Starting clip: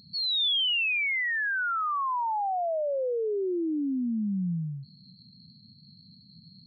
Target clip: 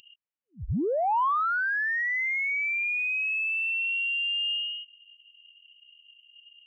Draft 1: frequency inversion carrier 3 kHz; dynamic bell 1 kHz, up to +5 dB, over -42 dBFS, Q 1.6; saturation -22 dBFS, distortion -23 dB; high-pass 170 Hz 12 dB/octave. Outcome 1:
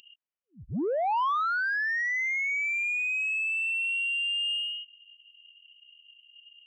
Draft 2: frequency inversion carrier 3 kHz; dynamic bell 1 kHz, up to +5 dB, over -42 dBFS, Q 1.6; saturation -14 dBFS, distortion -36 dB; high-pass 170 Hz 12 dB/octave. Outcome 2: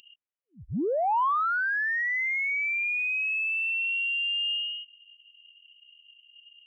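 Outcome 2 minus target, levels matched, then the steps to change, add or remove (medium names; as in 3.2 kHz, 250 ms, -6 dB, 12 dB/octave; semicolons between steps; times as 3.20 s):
125 Hz band -5.5 dB
change: high-pass 57 Hz 12 dB/octave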